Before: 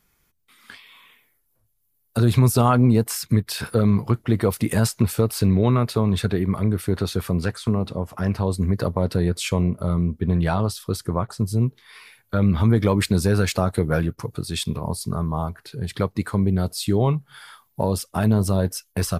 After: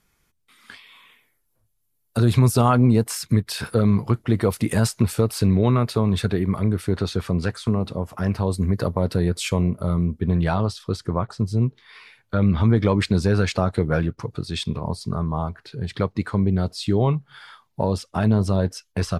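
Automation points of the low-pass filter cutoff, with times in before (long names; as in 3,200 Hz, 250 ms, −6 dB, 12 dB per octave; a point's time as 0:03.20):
0:06.56 11,000 Hz
0:07.20 6,600 Hz
0:07.86 12,000 Hz
0:10.10 12,000 Hz
0:10.79 5,600 Hz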